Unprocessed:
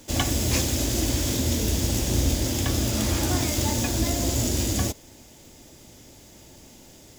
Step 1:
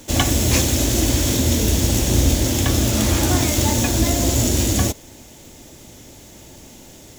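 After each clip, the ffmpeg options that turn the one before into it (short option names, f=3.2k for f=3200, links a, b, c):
-af "bandreject=f=4.9k:w=14,volume=6.5dB"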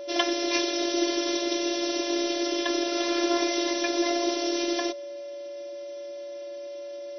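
-af "afftfilt=real='re*between(b*sr/4096,270,6100)':imag='im*between(b*sr/4096,270,6100)':win_size=4096:overlap=0.75,afftfilt=real='hypot(re,im)*cos(PI*b)':imag='0':win_size=512:overlap=0.75,aeval=exprs='val(0)+0.02*sin(2*PI*570*n/s)':c=same,volume=-1dB"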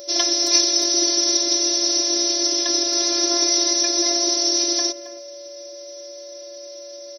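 -filter_complex "[0:a]asplit=2[a][b];[b]adelay=270,highpass=300,lowpass=3.4k,asoftclip=type=hard:threshold=-14.5dB,volume=-13dB[c];[a][c]amix=inputs=2:normalize=0,aexciter=amount=11:drive=4.3:freq=4.4k,volume=-1.5dB"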